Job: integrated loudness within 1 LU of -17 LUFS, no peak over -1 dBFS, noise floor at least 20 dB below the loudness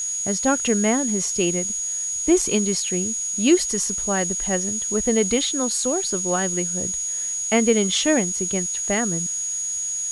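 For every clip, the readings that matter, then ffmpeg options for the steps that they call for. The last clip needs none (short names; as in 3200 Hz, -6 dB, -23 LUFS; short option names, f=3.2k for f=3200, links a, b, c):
steady tone 6700 Hz; tone level -24 dBFS; noise floor -27 dBFS; noise floor target -41 dBFS; loudness -21.0 LUFS; peak -5.5 dBFS; loudness target -17.0 LUFS
-> -af "bandreject=f=6.7k:w=30"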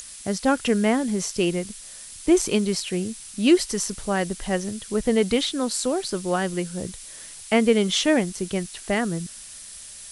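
steady tone none; noise floor -41 dBFS; noise floor target -44 dBFS
-> -af "afftdn=nr=6:nf=-41"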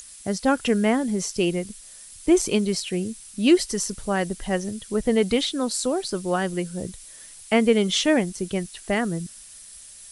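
noise floor -45 dBFS; loudness -23.5 LUFS; peak -6.5 dBFS; loudness target -17.0 LUFS
-> -af "volume=6.5dB,alimiter=limit=-1dB:level=0:latency=1"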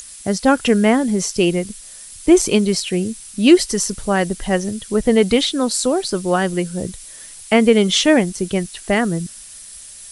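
loudness -17.5 LUFS; peak -1.0 dBFS; noise floor -38 dBFS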